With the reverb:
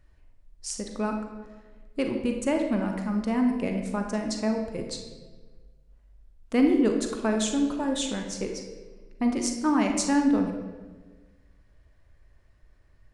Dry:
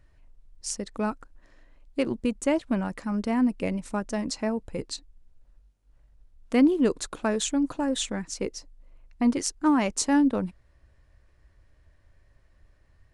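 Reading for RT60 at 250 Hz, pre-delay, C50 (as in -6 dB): 1.6 s, 5 ms, 4.5 dB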